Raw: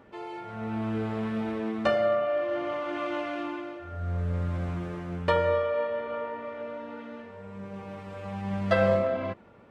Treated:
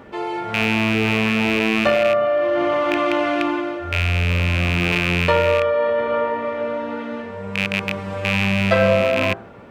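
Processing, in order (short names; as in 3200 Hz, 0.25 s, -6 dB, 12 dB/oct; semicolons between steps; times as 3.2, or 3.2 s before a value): rattling part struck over -38 dBFS, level -20 dBFS; de-hum 56.45 Hz, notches 29; in parallel at -1 dB: negative-ratio compressor -32 dBFS, ratio -1; on the sum: gain +6 dB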